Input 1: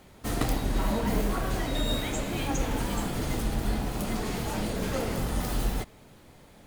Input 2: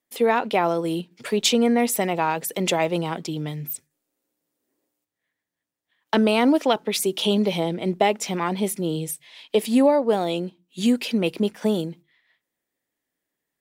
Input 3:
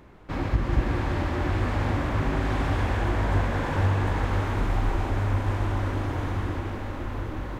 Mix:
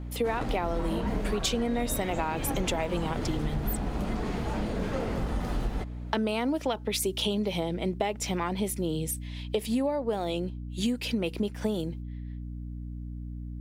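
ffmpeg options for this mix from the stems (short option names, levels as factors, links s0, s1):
-filter_complex "[0:a]aemphasis=mode=reproduction:type=75fm,volume=1[s0];[1:a]aeval=exprs='val(0)+0.02*(sin(2*PI*60*n/s)+sin(2*PI*2*60*n/s)/2+sin(2*PI*3*60*n/s)/3+sin(2*PI*4*60*n/s)/4+sin(2*PI*5*60*n/s)/5)':c=same,volume=0.794[s1];[s0][s1]amix=inputs=2:normalize=0,acompressor=threshold=0.0562:ratio=6"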